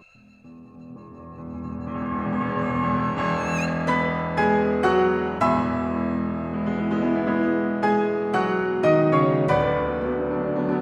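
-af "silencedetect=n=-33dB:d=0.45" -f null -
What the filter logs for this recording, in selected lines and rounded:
silence_start: 0.00
silence_end: 0.91 | silence_duration: 0.91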